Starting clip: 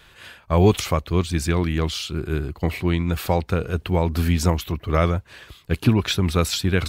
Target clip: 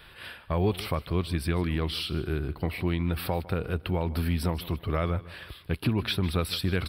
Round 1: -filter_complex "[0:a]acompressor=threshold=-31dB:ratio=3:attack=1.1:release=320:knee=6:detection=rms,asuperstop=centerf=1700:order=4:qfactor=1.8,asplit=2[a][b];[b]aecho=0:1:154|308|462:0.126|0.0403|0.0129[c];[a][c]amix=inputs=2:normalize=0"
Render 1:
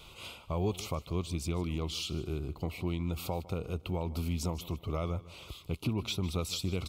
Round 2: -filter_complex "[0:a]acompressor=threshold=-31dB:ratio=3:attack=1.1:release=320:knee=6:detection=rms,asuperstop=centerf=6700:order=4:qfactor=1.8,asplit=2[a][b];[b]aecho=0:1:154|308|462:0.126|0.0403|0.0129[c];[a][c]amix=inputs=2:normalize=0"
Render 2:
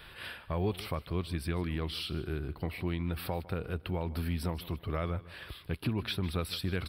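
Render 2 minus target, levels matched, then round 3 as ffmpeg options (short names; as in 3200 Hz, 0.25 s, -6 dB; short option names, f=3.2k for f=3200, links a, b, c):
compressor: peak gain reduction +6 dB
-filter_complex "[0:a]acompressor=threshold=-22dB:ratio=3:attack=1.1:release=320:knee=6:detection=rms,asuperstop=centerf=6700:order=4:qfactor=1.8,asplit=2[a][b];[b]aecho=0:1:154|308|462:0.126|0.0403|0.0129[c];[a][c]amix=inputs=2:normalize=0"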